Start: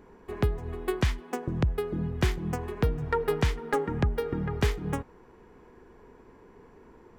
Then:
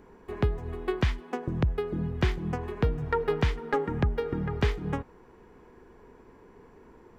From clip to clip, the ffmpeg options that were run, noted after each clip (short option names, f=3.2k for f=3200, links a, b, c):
-filter_complex "[0:a]acrossover=split=5100[a][b];[b]acompressor=threshold=-59dB:ratio=4:attack=1:release=60[c];[a][c]amix=inputs=2:normalize=0"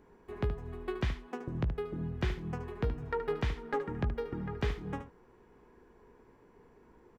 -af "aecho=1:1:17|74:0.282|0.316,volume=-7.5dB"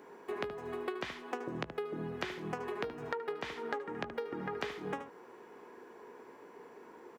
-af "highpass=350,acompressor=threshold=-44dB:ratio=16,volume=10dB"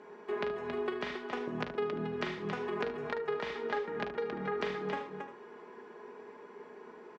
-filter_complex "[0:a]lowpass=5k,aecho=1:1:4.8:0.49,asplit=2[a][b];[b]aecho=0:1:41|50|274:0.316|0.211|0.447[c];[a][c]amix=inputs=2:normalize=0"